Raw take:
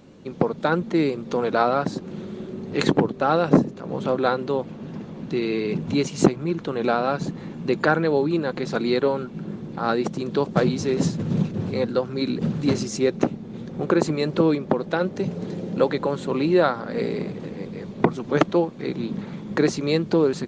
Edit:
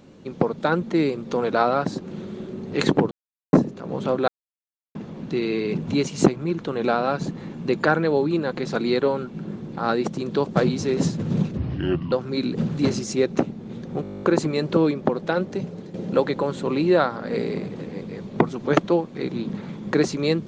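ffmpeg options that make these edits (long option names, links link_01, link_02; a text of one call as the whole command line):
ffmpeg -i in.wav -filter_complex "[0:a]asplit=18[link_01][link_02][link_03][link_04][link_05][link_06][link_07][link_08][link_09][link_10][link_11][link_12][link_13][link_14][link_15][link_16][link_17][link_18];[link_01]atrim=end=3.11,asetpts=PTS-STARTPTS,afade=type=out:start_time=3.106:duration=0.004:curve=hsin[link_19];[link_02]atrim=start=3.11:end=3.53,asetpts=PTS-STARTPTS,volume=0[link_20];[link_03]atrim=start=3.53:end=4.28,asetpts=PTS-STARTPTS,afade=type=in:duration=0.004:curve=hsin,afade=type=out:start_time=0.746:duration=0.004:curve=hsin[link_21];[link_04]atrim=start=4.28:end=4.95,asetpts=PTS-STARTPTS,volume=0[link_22];[link_05]atrim=start=4.95:end=11.574,asetpts=PTS-STARTPTS,afade=type=in:duration=0.004:curve=hsin[link_23];[link_06]atrim=start=11.57:end=11.96,asetpts=PTS-STARTPTS,asetrate=31311,aresample=44100[link_24];[link_07]atrim=start=11.956:end=13.882[link_25];[link_08]atrim=start=13.858:end=13.882[link_26];[link_09]atrim=start=13.858:end=13.882[link_27];[link_10]atrim=start=13.858:end=13.882[link_28];[link_11]atrim=start=13.858:end=13.882[link_29];[link_12]atrim=start=13.858:end=13.882[link_30];[link_13]atrim=start=13.858:end=13.882[link_31];[link_14]atrim=start=13.858:end=13.882[link_32];[link_15]atrim=start=13.858:end=13.882[link_33];[link_16]atrim=start=13.858:end=13.882[link_34];[link_17]atrim=start=13.858:end=15.58,asetpts=PTS-STARTPTS,afade=type=out:start_time=1.202:duration=0.52:silence=0.298538[link_35];[link_18]atrim=start=15.58,asetpts=PTS-STARTPTS,afade=type=in:duration=0.004:curve=hsin:silence=0.298538[link_36];[link_19][link_20][link_21][link_22][link_23]concat=n=5:v=0:a=1[link_37];[link_37][link_24]acrossfade=duration=0.004:curve1=hsin:curve2=hsin[link_38];[link_38][link_25]acrossfade=duration=0.004:curve1=hsin:curve2=hsin[link_39];[link_39][link_26]acrossfade=duration=0.004:curve1=hsin:curve2=hsin[link_40];[link_40][link_27]acrossfade=duration=0.004:curve1=hsin:curve2=hsin[link_41];[link_41][link_28]acrossfade=duration=0.004:curve1=hsin:curve2=hsin[link_42];[link_42][link_29]acrossfade=duration=0.004:curve1=hsin:curve2=hsin[link_43];[link_43][link_30]acrossfade=duration=0.004:curve1=hsin:curve2=hsin[link_44];[link_44][link_31]acrossfade=duration=0.004:curve1=hsin:curve2=hsin[link_45];[link_45][link_32]acrossfade=duration=0.004:curve1=hsin:curve2=hsin[link_46];[link_46][link_33]acrossfade=duration=0.004:curve1=hsin:curve2=hsin[link_47];[link_47][link_34]acrossfade=duration=0.004:curve1=hsin:curve2=hsin[link_48];[link_35][link_36]concat=n=2:v=0:a=1[link_49];[link_48][link_49]acrossfade=duration=0.004:curve1=hsin:curve2=hsin" out.wav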